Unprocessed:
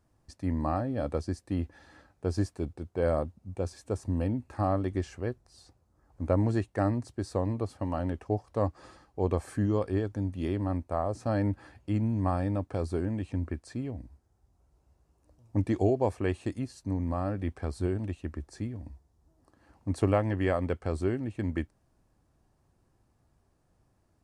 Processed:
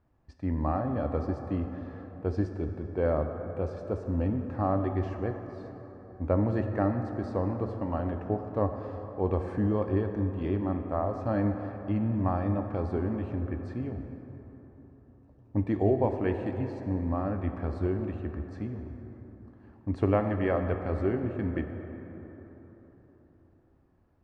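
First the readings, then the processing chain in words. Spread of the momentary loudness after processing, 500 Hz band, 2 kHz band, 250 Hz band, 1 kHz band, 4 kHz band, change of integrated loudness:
15 LU, +1.0 dB, 0.0 dB, +1.5 dB, +1.0 dB, no reading, +1.0 dB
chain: low-pass 2.5 kHz 12 dB/octave; plate-style reverb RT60 4.1 s, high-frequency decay 0.45×, DRR 5.5 dB

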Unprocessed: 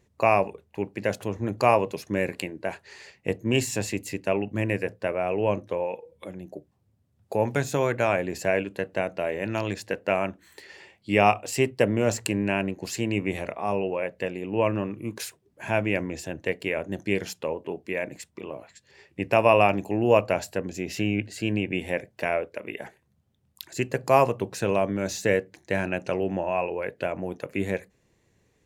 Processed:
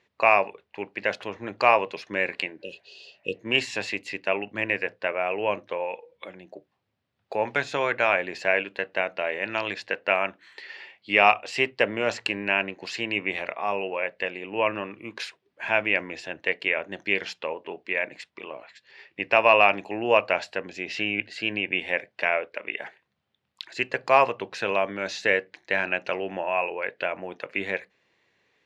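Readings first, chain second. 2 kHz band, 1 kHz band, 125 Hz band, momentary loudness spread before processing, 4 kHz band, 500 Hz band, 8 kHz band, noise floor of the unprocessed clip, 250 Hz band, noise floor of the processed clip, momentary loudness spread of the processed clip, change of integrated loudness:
+6.5 dB, +1.5 dB, -13.5 dB, 14 LU, +5.5 dB, -2.0 dB, -10.0 dB, -68 dBFS, -7.5 dB, -76 dBFS, 16 LU, +1.0 dB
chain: spectral replace 2.62–3.35 s, 560–2500 Hz; frequency weighting ITU-R 468; in parallel at -3.5 dB: hard clipper -8.5 dBFS, distortion -22 dB; on the sum: distance through air 360 m

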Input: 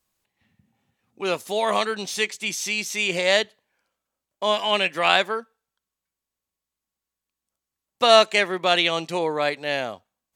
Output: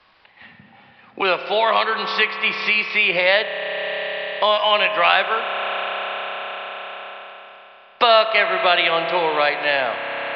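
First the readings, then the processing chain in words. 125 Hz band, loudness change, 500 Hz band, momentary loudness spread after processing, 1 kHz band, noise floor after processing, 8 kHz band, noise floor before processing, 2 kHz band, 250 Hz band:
-3.0 dB, +3.0 dB, +3.0 dB, 14 LU, +5.5 dB, -50 dBFS, under -25 dB, under -85 dBFS, +7.0 dB, -1.5 dB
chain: three-band isolator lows -13 dB, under 580 Hz, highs -13 dB, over 3.3 kHz; spring tank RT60 3.5 s, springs 30 ms, chirp 50 ms, DRR 8.5 dB; resampled via 11.025 kHz; three bands compressed up and down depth 70%; trim +7 dB

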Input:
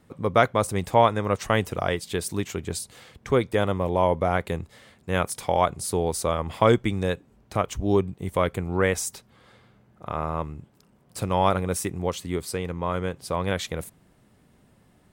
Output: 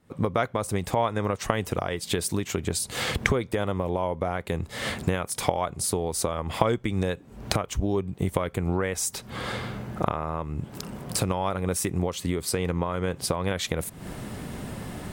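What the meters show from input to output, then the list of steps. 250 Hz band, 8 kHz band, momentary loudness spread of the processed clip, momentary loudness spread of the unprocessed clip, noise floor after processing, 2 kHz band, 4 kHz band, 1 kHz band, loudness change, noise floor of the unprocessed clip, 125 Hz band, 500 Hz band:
-1.0 dB, +3.0 dB, 9 LU, 13 LU, -48 dBFS, -1.0 dB, +2.0 dB, -4.5 dB, -3.0 dB, -60 dBFS, -0.5 dB, -4.0 dB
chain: recorder AGC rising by 74 dB/s; trim -7 dB

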